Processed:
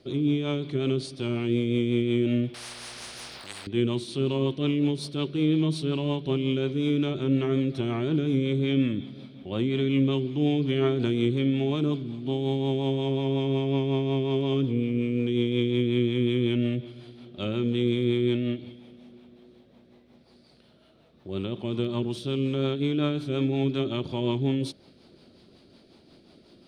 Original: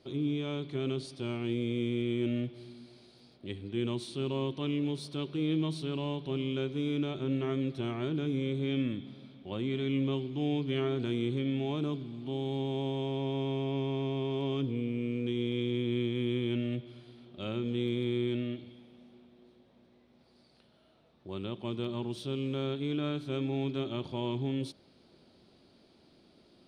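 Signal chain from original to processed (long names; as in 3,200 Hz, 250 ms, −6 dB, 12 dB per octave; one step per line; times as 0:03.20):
rotating-speaker cabinet horn 5.5 Hz
0:02.54–0:03.67: every bin compressed towards the loudest bin 10 to 1
level +8.5 dB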